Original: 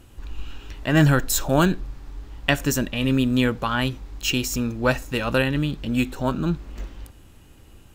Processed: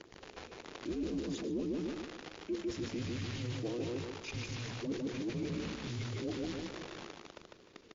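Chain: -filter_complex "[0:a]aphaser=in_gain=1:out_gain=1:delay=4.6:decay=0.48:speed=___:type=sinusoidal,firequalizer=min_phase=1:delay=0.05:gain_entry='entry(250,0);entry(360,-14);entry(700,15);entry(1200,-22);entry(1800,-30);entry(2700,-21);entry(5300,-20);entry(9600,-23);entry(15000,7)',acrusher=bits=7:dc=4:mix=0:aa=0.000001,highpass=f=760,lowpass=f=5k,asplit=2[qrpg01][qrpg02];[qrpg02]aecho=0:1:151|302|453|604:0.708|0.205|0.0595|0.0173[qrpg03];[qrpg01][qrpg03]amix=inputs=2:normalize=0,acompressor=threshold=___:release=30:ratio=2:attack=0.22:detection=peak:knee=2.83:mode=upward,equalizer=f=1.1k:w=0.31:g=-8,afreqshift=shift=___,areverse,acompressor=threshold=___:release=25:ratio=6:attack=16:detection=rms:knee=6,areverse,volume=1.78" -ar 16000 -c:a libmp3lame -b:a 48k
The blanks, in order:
0.68, 0.00398, -360, 0.00794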